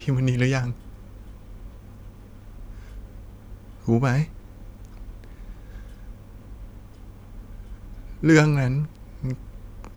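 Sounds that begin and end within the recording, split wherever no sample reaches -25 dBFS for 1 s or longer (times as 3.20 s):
3.88–4.24 s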